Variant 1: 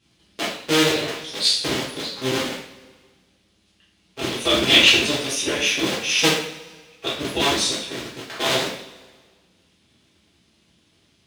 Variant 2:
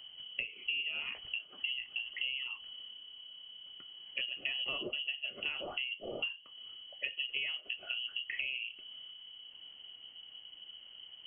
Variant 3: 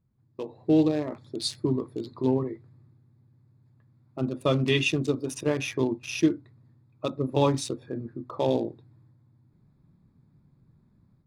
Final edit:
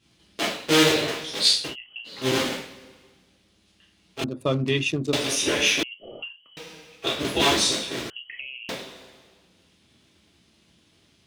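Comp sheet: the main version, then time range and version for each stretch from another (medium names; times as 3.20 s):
1
1.64–2.16 s: from 2, crossfade 0.24 s
4.24–5.13 s: from 3
5.83–6.57 s: from 2
8.10–8.69 s: from 2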